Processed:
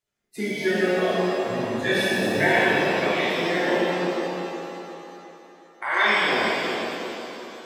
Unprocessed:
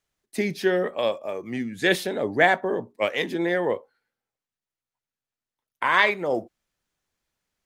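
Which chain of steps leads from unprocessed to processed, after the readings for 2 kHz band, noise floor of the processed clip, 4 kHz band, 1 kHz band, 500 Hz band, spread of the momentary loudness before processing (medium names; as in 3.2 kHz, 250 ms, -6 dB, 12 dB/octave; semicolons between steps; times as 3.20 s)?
+3.0 dB, -52 dBFS, +4.5 dB, +1.5 dB, +1.5 dB, 11 LU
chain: coarse spectral quantiser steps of 30 dB; band-passed feedback delay 359 ms, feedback 48%, band-pass 350 Hz, level -3.5 dB; pitch-shifted reverb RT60 2.7 s, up +7 st, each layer -8 dB, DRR -8.5 dB; trim -7.5 dB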